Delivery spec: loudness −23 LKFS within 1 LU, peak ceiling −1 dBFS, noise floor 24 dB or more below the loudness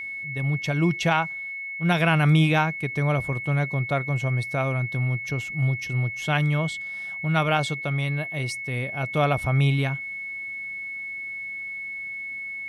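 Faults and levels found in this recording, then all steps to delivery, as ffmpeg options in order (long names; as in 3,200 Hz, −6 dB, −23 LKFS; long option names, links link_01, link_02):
interfering tone 2,200 Hz; level of the tone −31 dBFS; integrated loudness −25.0 LKFS; sample peak −8.0 dBFS; target loudness −23.0 LKFS
→ -af "bandreject=frequency=2200:width=30"
-af "volume=2dB"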